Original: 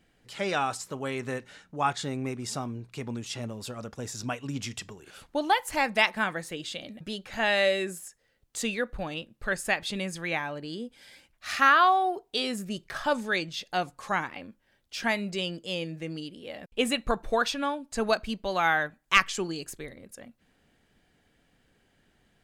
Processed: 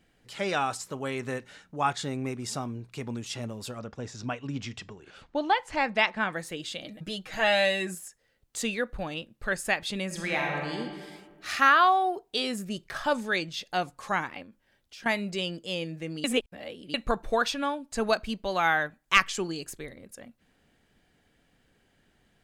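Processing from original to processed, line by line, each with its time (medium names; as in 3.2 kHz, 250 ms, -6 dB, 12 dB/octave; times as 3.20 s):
3.79–6.33 s: distance through air 110 m
6.84–7.95 s: comb 6.3 ms, depth 70%
10.06–10.78 s: reverb throw, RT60 1.7 s, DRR 0 dB
14.42–15.06 s: compression 3:1, threshold -47 dBFS
16.24–16.94 s: reverse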